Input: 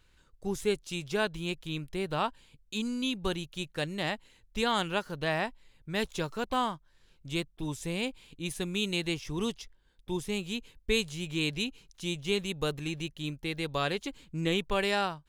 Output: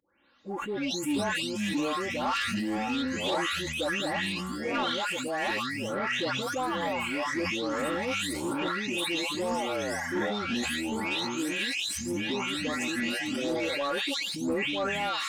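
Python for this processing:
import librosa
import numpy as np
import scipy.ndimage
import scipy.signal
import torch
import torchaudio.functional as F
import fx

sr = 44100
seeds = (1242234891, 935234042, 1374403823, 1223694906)

y = fx.spec_delay(x, sr, highs='late', ms=480)
y = scipy.signal.sosfilt(scipy.signal.butter(2, 300.0, 'highpass', fs=sr, output='sos'), y)
y = fx.echo_pitch(y, sr, ms=99, semitones=-6, count=2, db_per_echo=-3.0)
y = fx.rider(y, sr, range_db=10, speed_s=0.5)
y = y + 0.57 * np.pad(y, (int(3.6 * sr / 1000.0), 0))[:len(y)]
y = 10.0 ** (-25.5 / 20.0) * np.tanh(y / 10.0 ** (-25.5 / 20.0))
y = fx.sustainer(y, sr, db_per_s=21.0)
y = F.gain(torch.from_numpy(y), 3.0).numpy()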